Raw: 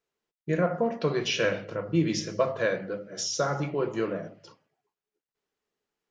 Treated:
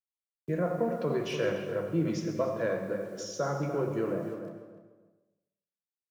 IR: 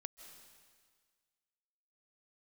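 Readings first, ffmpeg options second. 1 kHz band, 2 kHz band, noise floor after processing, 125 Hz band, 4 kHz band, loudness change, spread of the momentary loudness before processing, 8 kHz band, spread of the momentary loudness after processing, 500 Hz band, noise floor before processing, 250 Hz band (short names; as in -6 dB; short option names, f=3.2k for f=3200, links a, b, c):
-4.0 dB, -7.5 dB, under -85 dBFS, -2.5 dB, -11.0 dB, -3.5 dB, 7 LU, -10.0 dB, 8 LU, -2.0 dB, under -85 dBFS, -2.0 dB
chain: -filter_complex "[0:a]agate=range=-33dB:threshold=-40dB:ratio=3:detection=peak,highpass=f=56:p=1,equalizer=f=4.3k:t=o:w=2.4:g=-12,asplit=2[a][b];[b]alimiter=limit=-22.5dB:level=0:latency=1,volume=3dB[c];[a][c]amix=inputs=2:normalize=0,acrusher=bits=8:mix=0:aa=0.000001,acrossover=split=150|1400[d][e][f];[f]volume=25.5dB,asoftclip=hard,volume=-25.5dB[g];[d][e][g]amix=inputs=3:normalize=0,asplit=2[h][i];[i]adelay=295,lowpass=f=1.6k:p=1,volume=-7.5dB,asplit=2[j][k];[k]adelay=295,lowpass=f=1.6k:p=1,volume=0.25,asplit=2[l][m];[m]adelay=295,lowpass=f=1.6k:p=1,volume=0.25[n];[h][j][l][n]amix=inputs=4:normalize=0[o];[1:a]atrim=start_sample=2205,asetrate=79380,aresample=44100[p];[o][p]afir=irnorm=-1:irlink=0,volume=2dB"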